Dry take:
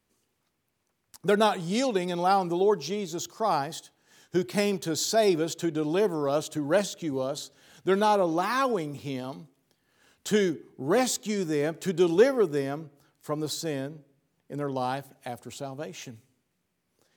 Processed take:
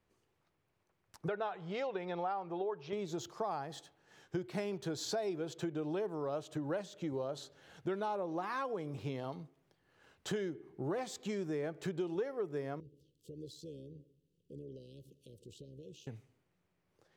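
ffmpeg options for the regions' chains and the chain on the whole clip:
-filter_complex "[0:a]asettb=1/sr,asplit=3[a][b][c];[a]atrim=end=1.284[d];[b]atrim=start=1.28:end=2.93,asetpts=PTS-STARTPTS,afade=t=in:d=0.004:c=qsin,afade=t=out:st=1.646:d=0.004:c=qsin,lowpass=2.9k,equalizer=f=240:w=1.2:g=-12[e];[c]atrim=start=2.926[f];[d][e]acrossfade=d=0.004:c1=hsin:c2=qsin[g];[g][f]acrossfade=d=0.004:c1=qsin:c2=hsin,asettb=1/sr,asplit=3[h][i][j];[h]atrim=end=12.804[k];[i]atrim=start=12.8:end=16.07,asetpts=PTS-STARTPTS,afade=t=in:d=0.004:c=qsin,afade=t=out:st=3.266:d=0.004:c=qsin,acompressor=threshold=-45dB:ratio=2.5:attack=3.2:release=140:knee=1:detection=peak,asuperstop=centerf=1200:order=20:qfactor=0.53,tremolo=f=71:d=0.462[l];[j]atrim=start=16.066[m];[k][l]acrossfade=d=0.004:c1=hsin:c2=qsin[n];[n][m]acrossfade=d=0.004:c1=qsin:c2=hsin,lowpass=f=1.9k:p=1,equalizer=f=240:w=3.8:g=-9,acompressor=threshold=-35dB:ratio=6"

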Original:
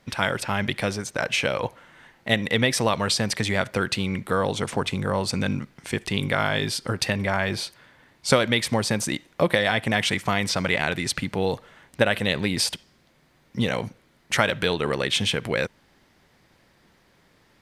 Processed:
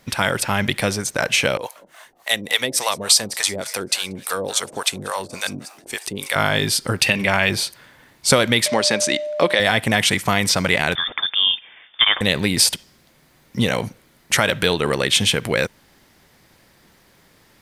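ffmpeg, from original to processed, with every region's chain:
-filter_complex "[0:a]asettb=1/sr,asplit=3[a][b][c];[a]atrim=end=1.574[d];[b]atrim=start=1.57:end=6.36,asetpts=PTS-STARTPTS,afade=t=in:d=0.004:c=qsin,afade=t=out:st=4.786:d=0.004:c=qsin,bass=f=250:g=-12,treble=f=4k:g=8,asplit=7[e][f][g][h][i][j][k];[f]adelay=186,afreqshift=74,volume=-18.5dB[l];[g]adelay=372,afreqshift=148,volume=-22.8dB[m];[h]adelay=558,afreqshift=222,volume=-27.1dB[n];[i]adelay=744,afreqshift=296,volume=-31.4dB[o];[j]adelay=930,afreqshift=370,volume=-35.7dB[p];[k]adelay=1116,afreqshift=444,volume=-40dB[q];[e][l][m][n][o][p][q]amix=inputs=7:normalize=0,atrim=end_sample=211239,acrossover=split=590[r][s];[r]aeval=exprs='val(0)*(1-1/2+1/2*cos(2*PI*3.5*n/s))':c=same[t];[s]aeval=exprs='val(0)*(1-1/2-1/2*cos(2*PI*3.5*n/s))':c=same[u];[t][u]amix=inputs=2:normalize=0[v];[c]atrim=start=6.356[w];[d][v]acrossfade=d=0.004:c1=hsin:c2=qsin[x];[x][w]acrossfade=d=0.004:c1=qsin:c2=hsin,asettb=1/sr,asplit=3[y][z][aa];[y]atrim=end=7.014[ab];[z]atrim=start=7.01:end=7.5,asetpts=PTS-STARTPTS,afade=t=in:d=0.004:c=qsin,afade=t=out:st=0.486:d=0.004:c=qsin,equalizer=f=2.7k:t=o:w=0.64:g=10.5,bandreject=f=50:t=h:w=6,bandreject=f=100:t=h:w=6[ac];[aa]atrim=start=7.496[ad];[ab][ac]acrossfade=d=0.004:c1=hsin:c2=qsin[ae];[ae][ad]acrossfade=d=0.004:c1=qsin:c2=hsin,asettb=1/sr,asplit=3[af][ag][ah];[af]atrim=end=8.664[ai];[ag]atrim=start=8.66:end=9.6,asetpts=PTS-STARTPTS,afade=t=in:d=0.004:c=qsin,afade=t=out:st=0.936:d=0.004:c=qsin,highshelf=f=2.7k:g=8.5,aeval=exprs='val(0)+0.0398*sin(2*PI*600*n/s)':c=same,highpass=260,lowpass=4.5k[aj];[ah]atrim=start=9.596[ak];[ai][aj]acrossfade=d=0.004:c1=hsin:c2=qsin[al];[al][ak]acrossfade=d=0.004:c1=qsin:c2=hsin,asettb=1/sr,asplit=3[am][an][ao];[am]atrim=end=10.954[ap];[an]atrim=start=10.95:end=12.21,asetpts=PTS-STARTPTS,afade=t=in:d=0.004:c=qsin,afade=t=out:st=1.256:d=0.004:c=qsin,highpass=100,lowpass=f=3.1k:t=q:w=0.5098,lowpass=f=3.1k:t=q:w=0.6013,lowpass=f=3.1k:t=q:w=0.9,lowpass=f=3.1k:t=q:w=2.563,afreqshift=-3700[aq];[ao]atrim=start=12.206[ar];[ap][aq]acrossfade=d=0.004:c1=hsin:c2=qsin[as];[as][ar]acrossfade=d=0.004:c1=qsin:c2=hsin,highshelf=f=7.6k:g=12,alimiter=level_in=5.5dB:limit=-1dB:release=50:level=0:latency=1,volume=-1dB"

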